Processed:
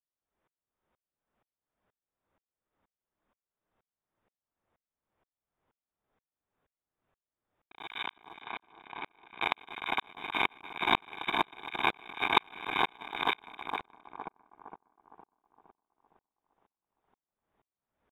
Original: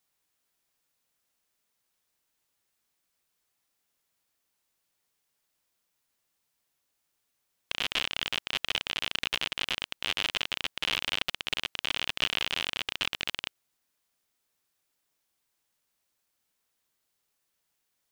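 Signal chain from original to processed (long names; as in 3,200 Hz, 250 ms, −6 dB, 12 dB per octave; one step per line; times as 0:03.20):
samples in bit-reversed order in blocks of 128 samples
low-shelf EQ 340 Hz +3.5 dB
in parallel at −2 dB: speech leveller 0.5 s
on the sum: voice inversion scrambler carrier 3,700 Hz
0:07.87–0:09.41: output level in coarse steps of 23 dB
echo with a time of its own for lows and highs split 1,300 Hz, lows 462 ms, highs 154 ms, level −3 dB
floating-point word with a short mantissa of 4 bits
low-pass that shuts in the quiet parts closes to 1,100 Hz, open at −31.5 dBFS
tremolo with a ramp in dB swelling 2.1 Hz, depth 38 dB
level +8.5 dB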